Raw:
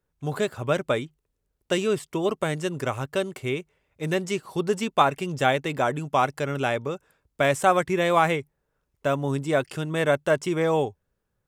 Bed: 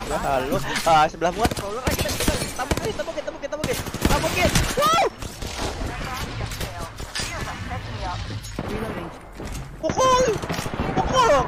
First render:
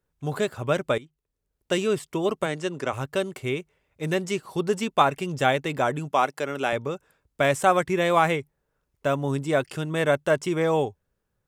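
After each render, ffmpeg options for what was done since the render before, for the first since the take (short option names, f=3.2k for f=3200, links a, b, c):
-filter_complex "[0:a]asplit=3[a][b][c];[a]afade=t=out:st=2.45:d=0.02[d];[b]highpass=190,lowpass=7.6k,afade=t=in:st=2.45:d=0.02,afade=t=out:st=2.92:d=0.02[e];[c]afade=t=in:st=2.92:d=0.02[f];[d][e][f]amix=inputs=3:normalize=0,asettb=1/sr,asplit=3[g][h][i];[g]atrim=end=6.114[j];[h]atrim=start=6.11:end=6.73,asetpts=PTS-STARTPTS,afade=t=in:d=0.004:c=qsin,afade=t=out:st=0.616:d=0.004:c=qsin,highpass=250[k];[i]atrim=start=6.726[l];[j][k]acrossfade=d=0.004:c1=hsin:c2=qsin[m];[m][l]acrossfade=d=0.004:c1=qsin:c2=hsin,asplit=2[n][o];[n]atrim=end=0.98,asetpts=PTS-STARTPTS,afade=t=out:st=0.976:d=0.004:c=hsin:silence=0.188365[p];[o]atrim=start=0.98,asetpts=PTS-STARTPTS,afade=t=in:d=0.78:silence=0.188365[q];[p][q]concat=n=2:v=0:a=1"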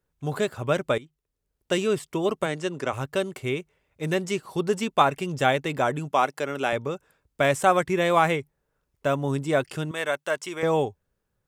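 -filter_complex "[0:a]asettb=1/sr,asplit=3[a][b][c];[a]atrim=end=9.914[d];[b]atrim=start=9.91:end=10.63,asetpts=PTS-STARTPTS,afade=t=in:d=0.004:c=qsin,afade=t=out:st=0.716:d=0.004:c=qsin,highpass=f=1k:p=1[e];[c]atrim=start=10.626[f];[d][e]acrossfade=d=0.004:c1=hsin:c2=qsin[g];[g][f]acrossfade=d=0.004:c1=qsin:c2=hsin"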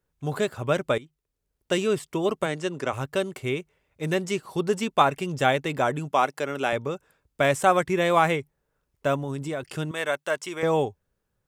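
-filter_complex "[0:a]asettb=1/sr,asplit=3[a][b][c];[a]atrim=end=9.164[d];[b]atrim=start=9.16:end=9.63,asetpts=PTS-STARTPTS,afade=t=in:d=0.004:c=qsin,afade=t=out:st=0.466:d=0.004:c=qsin,acompressor=threshold=-27dB:ratio=5:attack=3.2:release=140:knee=1:detection=peak[e];[c]atrim=start=9.626[f];[d][e]acrossfade=d=0.004:c1=hsin:c2=qsin[g];[g][f]acrossfade=d=0.004:c1=qsin:c2=hsin"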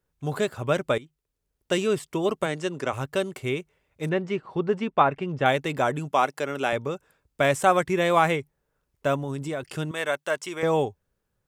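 -filter_complex "[0:a]asettb=1/sr,asplit=3[a][b][c];[a]atrim=end=4.094[d];[b]atrim=start=4.09:end=5.46,asetpts=PTS-STARTPTS,afade=t=in:d=0.004:c=qsin,afade=t=out:st=1.366:d=0.004:c=qsin,lowpass=2.3k[e];[c]atrim=start=5.456[f];[d][e]acrossfade=d=0.004:c1=hsin:c2=qsin[g];[g][f]acrossfade=d=0.004:c1=qsin:c2=hsin"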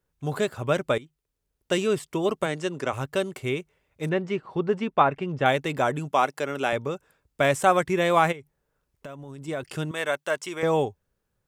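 -filter_complex "[0:a]asplit=3[a][b][c];[a]afade=t=out:st=8.31:d=0.02[d];[b]acompressor=threshold=-38dB:ratio=5:attack=3.2:release=140:knee=1:detection=peak,afade=t=in:st=8.31:d=0.02,afade=t=out:st=9.47:d=0.02[e];[c]afade=t=in:st=9.47:d=0.02[f];[d][e][f]amix=inputs=3:normalize=0"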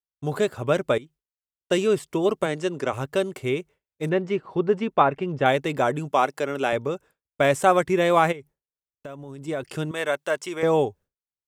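-af "agate=range=-33dB:threshold=-44dB:ratio=3:detection=peak,equalizer=f=400:t=o:w=1.5:g=3.5"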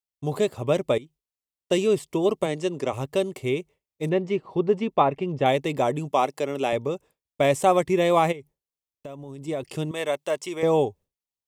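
-af "equalizer=f=1.5k:w=3.9:g=-14.5"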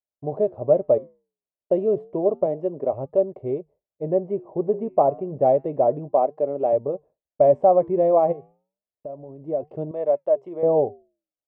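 -af "flanger=delay=1.7:depth=8:regen=-88:speed=0.3:shape=triangular,lowpass=f=630:t=q:w=3.9"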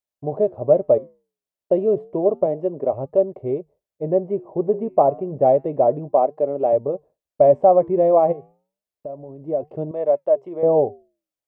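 -af "volume=2.5dB"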